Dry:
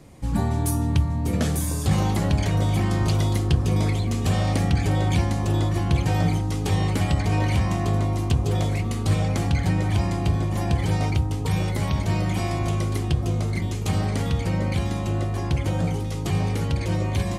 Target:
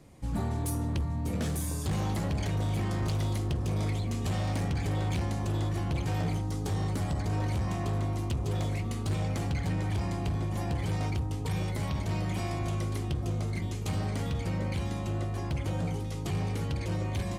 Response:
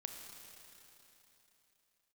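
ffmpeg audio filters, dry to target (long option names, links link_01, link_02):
-filter_complex "[0:a]asettb=1/sr,asplit=3[link_01][link_02][link_03];[link_01]atrim=end=6.504[link_04];[link_02]atrim=start=6.5:end=7.68,asetpts=PTS-STARTPTS,afade=type=in:duration=0.004:curve=qsin,afade=type=out:start_time=1.176:duration=0.004:curve=qsin,equalizer=frequency=2600:width_type=o:width=0.78:gain=-7.5[link_05];[link_03]atrim=start=7.676[link_06];[link_04][link_05]acrossfade=duration=0.004:curve1=hsin:curve2=qsin[link_07];[link_07][link_06]acrossfade=duration=0.004:curve1=qsin:curve2=hsin,volume=19dB,asoftclip=hard,volume=-19dB,volume=-7dB"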